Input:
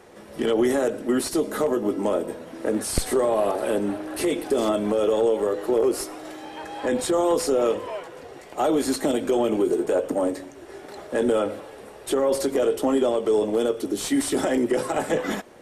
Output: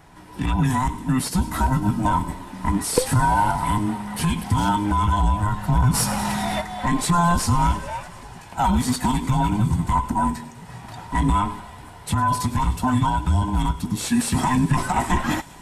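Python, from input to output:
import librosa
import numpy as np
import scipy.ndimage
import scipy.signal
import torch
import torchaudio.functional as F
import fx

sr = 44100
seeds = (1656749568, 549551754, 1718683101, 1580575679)

y = fx.band_invert(x, sr, width_hz=500)
y = fx.rider(y, sr, range_db=5, speed_s=2.0)
y = fx.echo_wet_highpass(y, sr, ms=101, feedback_pct=82, hz=3500.0, wet_db=-17.0)
y = fx.env_flatten(y, sr, amount_pct=50, at=(5.93, 6.6), fade=0.02)
y = y * 10.0 ** (2.0 / 20.0)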